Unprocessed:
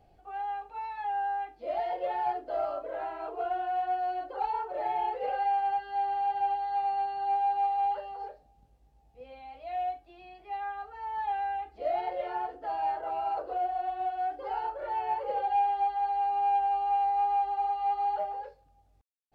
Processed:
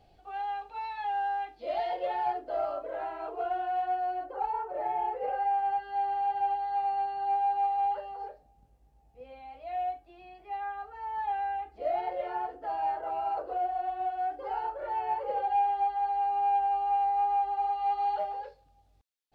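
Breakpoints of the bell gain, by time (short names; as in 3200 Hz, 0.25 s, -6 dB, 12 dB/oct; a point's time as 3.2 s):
bell 3900 Hz 1.2 oct
1.8 s +8.5 dB
2.42 s -0.5 dB
3.82 s -0.5 dB
4.35 s -12 dB
5.43 s -12 dB
5.87 s -3.5 dB
17.43 s -3.5 dB
18.12 s +6 dB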